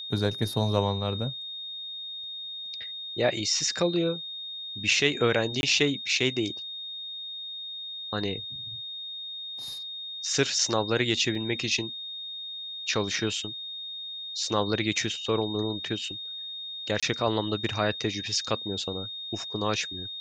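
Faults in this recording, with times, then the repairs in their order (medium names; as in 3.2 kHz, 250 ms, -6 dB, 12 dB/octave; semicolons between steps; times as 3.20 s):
whine 3.7 kHz -35 dBFS
5.61–5.63 s: dropout 21 ms
11.35 s: dropout 3.1 ms
17.00–17.03 s: dropout 26 ms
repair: band-stop 3.7 kHz, Q 30; interpolate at 5.61 s, 21 ms; interpolate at 11.35 s, 3.1 ms; interpolate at 17.00 s, 26 ms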